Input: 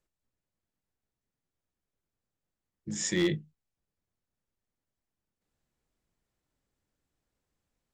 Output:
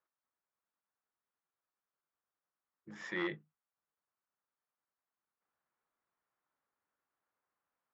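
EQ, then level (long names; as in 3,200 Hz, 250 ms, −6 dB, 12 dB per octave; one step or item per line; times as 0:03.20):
resonant band-pass 1,200 Hz, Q 1.9
high-frequency loss of the air 180 metres
+5.5 dB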